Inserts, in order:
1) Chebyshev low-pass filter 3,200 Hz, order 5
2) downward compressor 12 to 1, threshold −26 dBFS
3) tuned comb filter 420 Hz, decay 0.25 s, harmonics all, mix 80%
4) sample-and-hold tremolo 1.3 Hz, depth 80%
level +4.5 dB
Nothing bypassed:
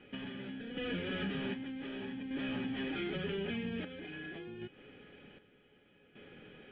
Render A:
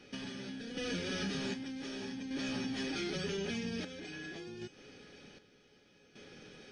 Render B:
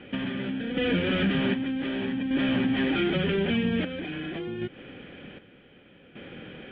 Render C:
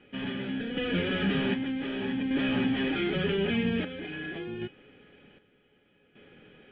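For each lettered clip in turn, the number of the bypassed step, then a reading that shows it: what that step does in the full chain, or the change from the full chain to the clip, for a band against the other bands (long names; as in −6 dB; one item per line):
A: 1, 4 kHz band +3.0 dB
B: 3, change in integrated loudness +12.0 LU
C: 2, average gain reduction 6.5 dB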